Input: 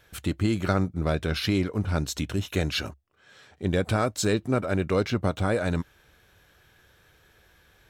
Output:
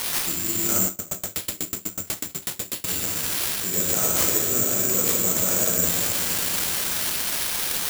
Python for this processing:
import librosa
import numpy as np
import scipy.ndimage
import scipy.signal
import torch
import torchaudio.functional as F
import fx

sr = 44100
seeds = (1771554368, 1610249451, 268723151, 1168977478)

y = x + 0.5 * 10.0 ** (-17.0 / 20.0) * np.diff(np.sign(x), prepend=np.sign(x[:1]))
y = fx.highpass(y, sr, hz=200.0, slope=6)
y = fx.room_shoebox(y, sr, seeds[0], volume_m3=180.0, walls='hard', distance_m=0.93)
y = (np.kron(y[::6], np.eye(6)[0]) * 6)[:len(y)]
y = fx.tremolo_decay(y, sr, direction='decaying', hz=8.1, depth_db=30, at=(0.86, 2.87), fade=0.02)
y = y * librosa.db_to_amplitude(-11.0)